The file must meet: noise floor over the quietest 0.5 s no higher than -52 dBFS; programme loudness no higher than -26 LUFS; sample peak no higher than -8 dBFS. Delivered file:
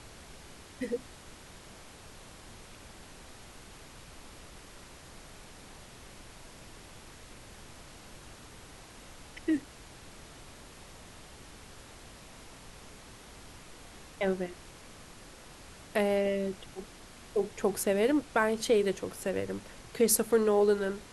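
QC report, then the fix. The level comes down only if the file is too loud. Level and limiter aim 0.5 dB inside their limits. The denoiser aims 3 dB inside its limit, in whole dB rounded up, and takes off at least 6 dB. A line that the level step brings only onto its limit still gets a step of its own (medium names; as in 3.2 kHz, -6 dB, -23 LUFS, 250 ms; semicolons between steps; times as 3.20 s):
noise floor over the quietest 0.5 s -51 dBFS: fail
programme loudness -30.0 LUFS: pass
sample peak -13.0 dBFS: pass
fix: noise reduction 6 dB, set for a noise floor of -51 dBFS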